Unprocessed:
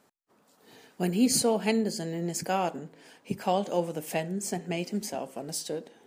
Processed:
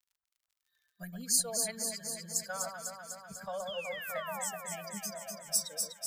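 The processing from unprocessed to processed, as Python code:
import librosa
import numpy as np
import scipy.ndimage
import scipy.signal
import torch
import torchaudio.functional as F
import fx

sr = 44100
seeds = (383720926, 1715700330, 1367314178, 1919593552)

y = fx.bin_expand(x, sr, power=2.0)
y = fx.recorder_agc(y, sr, target_db=-19.0, rise_db_per_s=7.8, max_gain_db=30)
y = fx.peak_eq(y, sr, hz=600.0, db=6.0, octaves=0.57)
y = fx.fixed_phaser(y, sr, hz=550.0, stages=8)
y = fx.dmg_crackle(y, sr, seeds[0], per_s=56.0, level_db=-60.0)
y = fx.tone_stack(y, sr, knobs='10-0-10')
y = fx.spec_paint(y, sr, seeds[1], shape='fall', start_s=3.67, length_s=0.77, low_hz=720.0, high_hz=3500.0, level_db=-47.0)
y = fx.echo_alternate(y, sr, ms=124, hz=1400.0, feedback_pct=82, wet_db=-3.0)
y = y * 10.0 ** (3.5 / 20.0)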